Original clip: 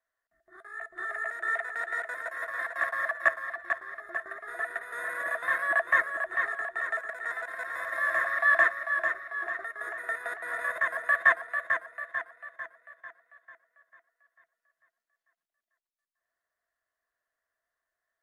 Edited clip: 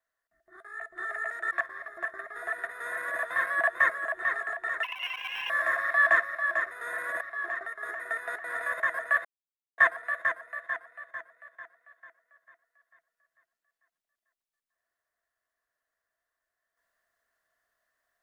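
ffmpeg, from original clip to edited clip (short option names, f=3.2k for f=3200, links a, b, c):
-filter_complex "[0:a]asplit=7[a][b][c][d][e][f][g];[a]atrim=end=1.512[h];[b]atrim=start=3.628:end=6.954[i];[c]atrim=start=6.95:end=7.98,asetpts=PTS-STARTPTS,asetrate=67914,aresample=44100,atrim=end_sample=29495,asetpts=PTS-STARTPTS[j];[d]atrim=start=7.976:end=9.192[k];[e]atrim=start=4.818:end=5.322[l];[f]atrim=start=9.188:end=11.23,asetpts=PTS-STARTPTS,afade=t=out:st=2.038:d=0.004:c=hsin,apad=pad_dur=0.53[m];[g]atrim=start=11.23,asetpts=PTS-STARTPTS,afade=t=in:d=0.004:c=hsin[n];[h][i]acrossfade=d=0.004:c1=hsin:c2=hsin[o];[o][j]acrossfade=d=0.004:c1=hsin:c2=hsin[p];[p][k]acrossfade=d=0.004:c1=hsin:c2=hsin[q];[q][l]acrossfade=d=0.004:c1=hsin:c2=hsin[r];[m][n]concat=n=2:v=0:a=1[s];[r][s]acrossfade=d=0.004:c1=hsin:c2=hsin"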